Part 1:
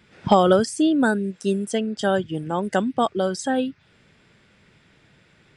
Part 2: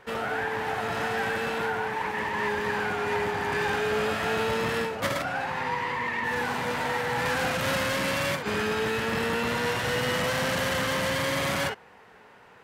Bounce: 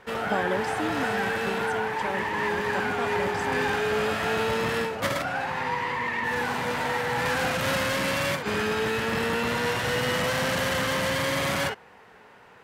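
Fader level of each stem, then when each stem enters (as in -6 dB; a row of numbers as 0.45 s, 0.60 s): -13.0 dB, +1.0 dB; 0.00 s, 0.00 s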